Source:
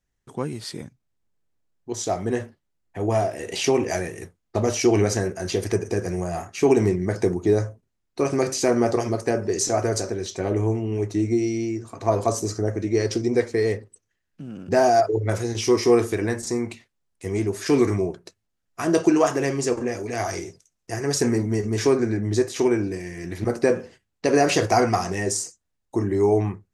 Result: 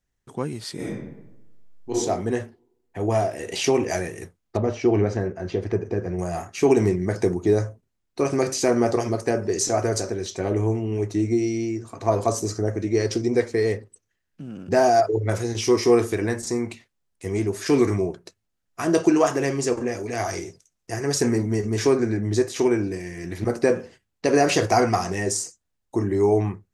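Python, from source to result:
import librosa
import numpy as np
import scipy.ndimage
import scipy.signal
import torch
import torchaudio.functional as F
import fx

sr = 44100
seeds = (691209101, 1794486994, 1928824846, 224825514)

y = fx.reverb_throw(x, sr, start_s=0.75, length_s=1.17, rt60_s=0.96, drr_db=-8.5)
y = fx.spacing_loss(y, sr, db_at_10k=29, at=(4.57, 6.19))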